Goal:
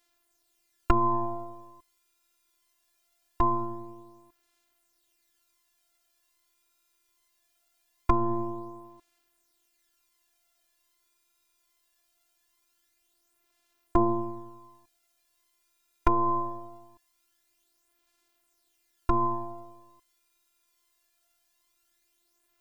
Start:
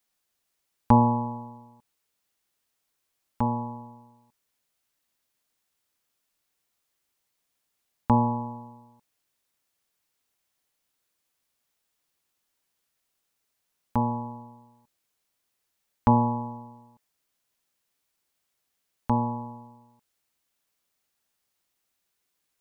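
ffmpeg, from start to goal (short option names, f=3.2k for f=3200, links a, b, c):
-af "acompressor=threshold=-22dB:ratio=6,afftfilt=real='hypot(re,im)*cos(PI*b)':imag='0':win_size=512:overlap=0.75,aphaser=in_gain=1:out_gain=1:delay=2.1:decay=0.46:speed=0.22:type=sinusoidal,volume=8dB"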